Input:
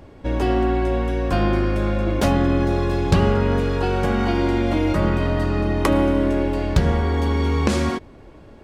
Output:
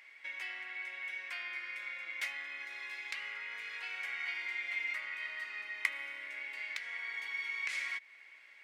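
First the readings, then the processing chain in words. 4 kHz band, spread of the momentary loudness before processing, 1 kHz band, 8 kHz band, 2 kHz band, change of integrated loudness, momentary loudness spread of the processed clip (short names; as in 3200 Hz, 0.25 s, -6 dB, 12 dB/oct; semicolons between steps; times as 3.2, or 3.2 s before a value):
-12.0 dB, 4 LU, -26.5 dB, -16.0 dB, -4.5 dB, -18.0 dB, 6 LU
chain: compressor 3:1, threshold -28 dBFS, peak gain reduction 12.5 dB; resonant high-pass 2100 Hz, resonance Q 9.7; gain -7.5 dB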